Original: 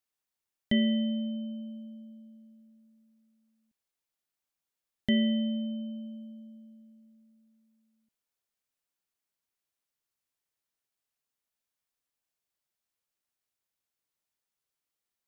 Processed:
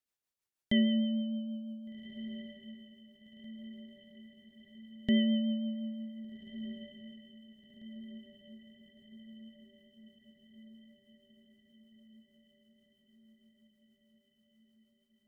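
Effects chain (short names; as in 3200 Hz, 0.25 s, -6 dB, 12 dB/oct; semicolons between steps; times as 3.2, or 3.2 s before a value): rotary speaker horn 6.3 Hz; diffused feedback echo 1.57 s, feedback 61%, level -14 dB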